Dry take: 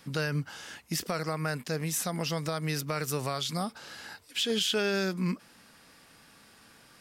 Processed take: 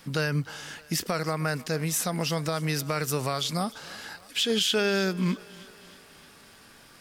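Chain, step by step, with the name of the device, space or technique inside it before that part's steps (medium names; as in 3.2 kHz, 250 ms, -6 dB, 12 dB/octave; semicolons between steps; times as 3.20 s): vinyl LP (crackle 34 per s -47 dBFS; pink noise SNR 37 dB); thinning echo 308 ms, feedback 64%, high-pass 230 Hz, level -21 dB; trim +3.5 dB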